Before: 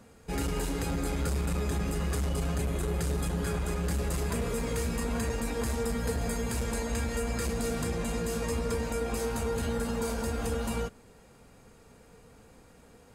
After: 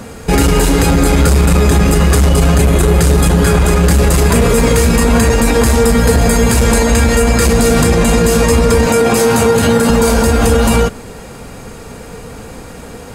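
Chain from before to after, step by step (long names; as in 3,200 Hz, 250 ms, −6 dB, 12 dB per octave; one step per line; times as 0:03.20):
0:08.86–0:09.90: high-pass filter 93 Hz 24 dB per octave
boost into a limiter +26 dB
level −1 dB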